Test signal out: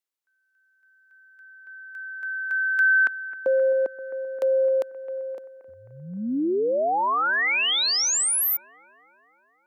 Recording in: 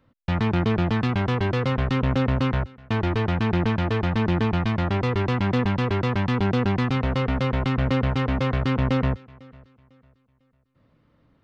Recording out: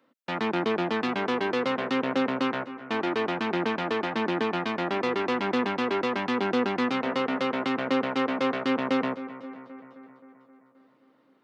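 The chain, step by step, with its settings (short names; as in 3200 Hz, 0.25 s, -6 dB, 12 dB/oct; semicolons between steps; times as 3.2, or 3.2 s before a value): HPF 250 Hz 24 dB/oct; on a send: analogue delay 0.263 s, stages 4096, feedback 64%, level -15 dB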